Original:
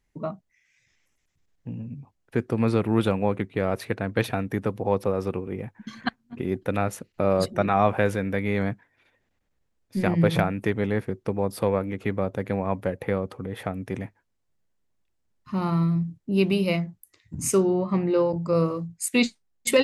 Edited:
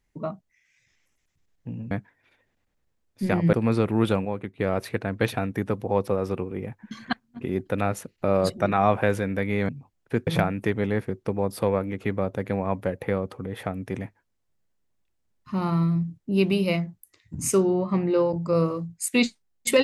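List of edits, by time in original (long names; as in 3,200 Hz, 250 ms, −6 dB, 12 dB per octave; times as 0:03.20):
0:01.91–0:02.49: swap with 0:08.65–0:10.27
0:03.21–0:03.55: clip gain −6 dB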